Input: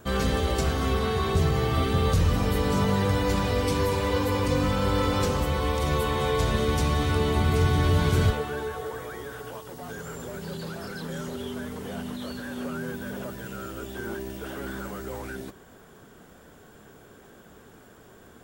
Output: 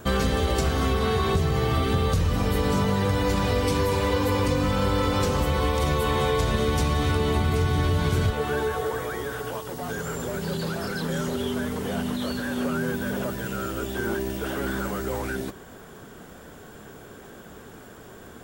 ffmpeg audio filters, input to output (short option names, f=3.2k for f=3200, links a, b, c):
-af "acompressor=threshold=-26dB:ratio=6,volume=6.5dB"